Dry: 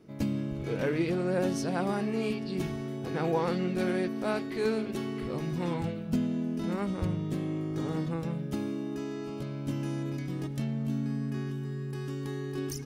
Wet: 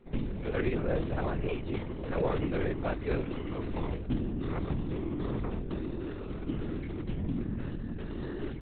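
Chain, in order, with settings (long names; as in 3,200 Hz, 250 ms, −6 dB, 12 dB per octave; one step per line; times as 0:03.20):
linear-prediction vocoder at 8 kHz whisper
time stretch by overlap-add 0.67×, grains 48 ms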